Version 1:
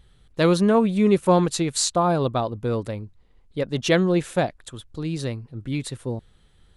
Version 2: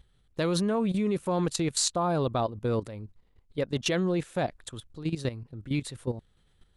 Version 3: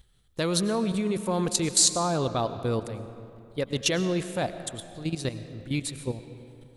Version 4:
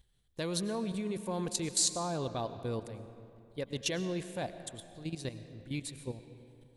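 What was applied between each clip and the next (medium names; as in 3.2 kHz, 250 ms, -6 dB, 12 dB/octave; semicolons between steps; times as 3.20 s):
level held to a coarse grid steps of 13 dB
treble shelf 4.1 kHz +10 dB; on a send at -11 dB: reverberation RT60 2.7 s, pre-delay 65 ms
band-stop 1.3 kHz, Q 7.4; trim -8.5 dB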